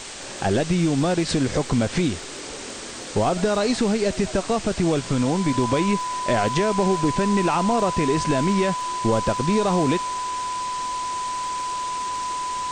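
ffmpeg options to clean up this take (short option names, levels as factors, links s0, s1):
-af "adeclick=t=4,bandreject=f=1000:w=30,afwtdn=0.022"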